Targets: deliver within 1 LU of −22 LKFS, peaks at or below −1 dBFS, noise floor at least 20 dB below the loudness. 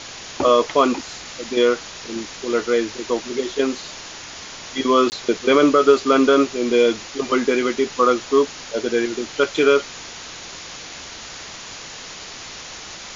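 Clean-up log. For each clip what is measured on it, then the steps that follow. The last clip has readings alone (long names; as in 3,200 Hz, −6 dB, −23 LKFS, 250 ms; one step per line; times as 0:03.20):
number of dropouts 1; longest dropout 19 ms; background noise floor −36 dBFS; target noise floor −39 dBFS; integrated loudness −19.0 LKFS; sample peak −2.5 dBFS; target loudness −22.0 LKFS
→ repair the gap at 0:05.10, 19 ms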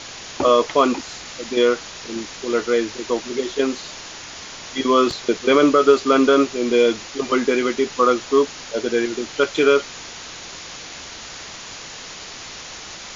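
number of dropouts 0; background noise floor −36 dBFS; target noise floor −39 dBFS
→ broadband denoise 6 dB, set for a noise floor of −36 dBFS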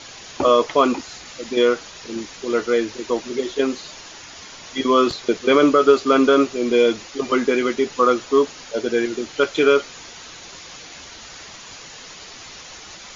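background noise floor −40 dBFS; integrated loudness −19.0 LKFS; sample peak −2.5 dBFS; target loudness −22.0 LKFS
→ level −3 dB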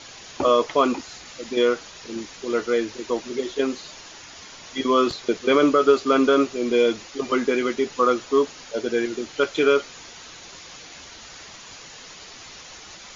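integrated loudness −22.0 LKFS; sample peak −5.5 dBFS; background noise floor −43 dBFS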